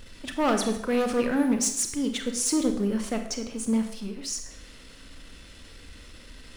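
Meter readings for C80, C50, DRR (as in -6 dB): 10.5 dB, 8.0 dB, 5.5 dB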